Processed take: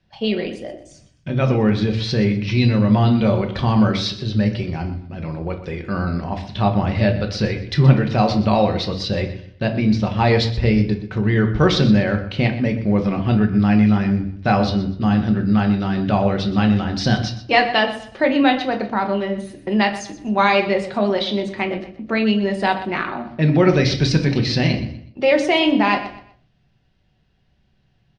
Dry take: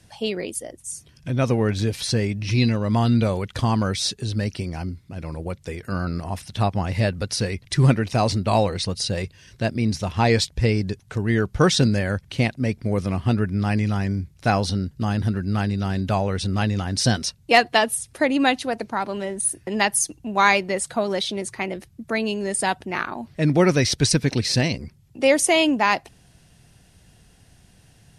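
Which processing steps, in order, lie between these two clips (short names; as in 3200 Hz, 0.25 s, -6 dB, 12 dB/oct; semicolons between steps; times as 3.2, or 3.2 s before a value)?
gate -43 dBFS, range -14 dB; LPF 4400 Hz 24 dB/oct; in parallel at -1 dB: limiter -14 dBFS, peak gain reduction 11 dB; on the sum: feedback echo 0.123 s, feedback 30%, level -14.5 dB; reverb RT60 0.40 s, pre-delay 5 ms, DRR 4.5 dB; gain -3 dB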